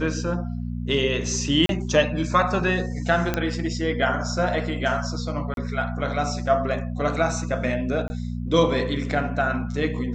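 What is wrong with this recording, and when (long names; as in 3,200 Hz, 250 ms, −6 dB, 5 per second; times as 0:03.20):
mains hum 60 Hz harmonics 4 −29 dBFS
0:01.66–0:01.69: drop-out 32 ms
0:03.34: click −9 dBFS
0:05.54–0:05.57: drop-out 32 ms
0:08.08–0:08.10: drop-out 20 ms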